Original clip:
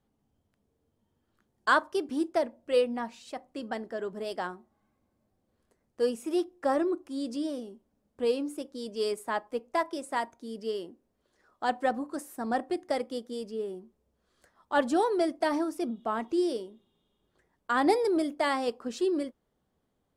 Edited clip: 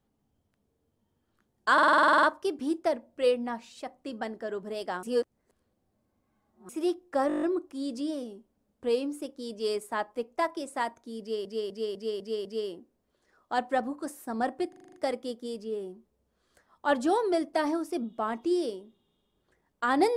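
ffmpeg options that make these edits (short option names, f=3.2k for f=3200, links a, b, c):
-filter_complex "[0:a]asplit=31[a][b][c][d][e][f][g][h][i][j][k][l][m][n][o][p][q][r][s][t][u][v][w][x][y][z][aa][ab][ac][ad][ae];[a]atrim=end=1.782[af];[b]atrim=start=1.728:end=1.782[ag];[c]atrim=start=1.728:end=1.782[ah];[d]atrim=start=1.728:end=1.782[ai];[e]atrim=start=1.728:end=1.782[aj];[f]atrim=start=1.728:end=1.782[ak];[g]atrim=start=1.728:end=1.782[al];[h]atrim=start=1.728:end=1.782[am];[i]atrim=start=1.728:end=1.782[an];[j]atrim=start=1.728:end=1.782[ao];[k]atrim=start=1.728:end=4.532[ap];[l]atrim=start=4.528:end=6.192,asetpts=PTS-STARTPTS,areverse[aq];[m]atrim=start=6.188:end=6.802[ar];[n]atrim=start=6.778:end=6.802[as];[o]atrim=start=6.778:end=6.802[at];[p]atrim=start=6.778:end=6.802[au];[q]atrim=start=6.778:end=6.802[av];[r]atrim=start=6.778:end=6.802[aw];[s]atrim=start=6.778:end=6.802[ax];[t]atrim=start=6.778:end=10.812[ay];[u]atrim=start=10.558:end=10.812[az];[v]atrim=start=10.558:end=10.812[ba];[w]atrim=start=10.558:end=10.812[bb];[x]atrim=start=10.558:end=10.812[bc];[y]atrim=start=10.558:end=12.842[bd];[z]atrim=start=12.798:end=12.842[be];[aa]atrim=start=12.798:end=12.842[bf];[ab]atrim=start=12.798:end=12.842[bg];[ac]atrim=start=12.798:end=12.842[bh];[ad]atrim=start=12.798:end=12.842[bi];[ae]atrim=start=12.798[bj];[af][ag]acrossfade=d=0.004:c1=hsin:c2=hsin[bk];[bk][ah]acrossfade=d=0.004:c1=hsin:c2=hsin[bl];[bl][ai]acrossfade=d=0.004:c1=hsin:c2=hsin[bm];[bm][aj]acrossfade=d=0.004:c1=hsin:c2=hsin[bn];[bn][ak]acrossfade=d=0.004:c1=hsin:c2=hsin[bo];[bo][al]acrossfade=d=0.004:c1=hsin:c2=hsin[bp];[bp][am]acrossfade=d=0.004:c1=hsin:c2=hsin[bq];[bq][an]acrossfade=d=0.004:c1=hsin:c2=hsin[br];[br][ao]acrossfade=d=0.004:c1=hsin:c2=hsin[bs];[bs][ap]acrossfade=d=0.004:c1=hsin:c2=hsin[bt];[bt][aq]acrossfade=d=0.004:c1=hsin:c2=hsin[bu];[bu][ar]acrossfade=d=0.004:c1=hsin:c2=hsin[bv];[bv][as]acrossfade=d=0.004:c1=hsin:c2=hsin[bw];[bw][at]acrossfade=d=0.004:c1=hsin:c2=hsin[bx];[bx][au]acrossfade=d=0.004:c1=hsin:c2=hsin[by];[by][av]acrossfade=d=0.004:c1=hsin:c2=hsin[bz];[bz][aw]acrossfade=d=0.004:c1=hsin:c2=hsin[ca];[ca][ax]acrossfade=d=0.004:c1=hsin:c2=hsin[cb];[cb][ay]acrossfade=d=0.004:c1=hsin:c2=hsin[cc];[cc][az]acrossfade=d=0.004:c1=hsin:c2=hsin[cd];[cd][ba]acrossfade=d=0.004:c1=hsin:c2=hsin[ce];[ce][bb]acrossfade=d=0.004:c1=hsin:c2=hsin[cf];[cf][bc]acrossfade=d=0.004:c1=hsin:c2=hsin[cg];[cg][bd]acrossfade=d=0.004:c1=hsin:c2=hsin[ch];[ch][be]acrossfade=d=0.004:c1=hsin:c2=hsin[ci];[ci][bf]acrossfade=d=0.004:c1=hsin:c2=hsin[cj];[cj][bg]acrossfade=d=0.004:c1=hsin:c2=hsin[ck];[ck][bh]acrossfade=d=0.004:c1=hsin:c2=hsin[cl];[cl][bi]acrossfade=d=0.004:c1=hsin:c2=hsin[cm];[cm][bj]acrossfade=d=0.004:c1=hsin:c2=hsin"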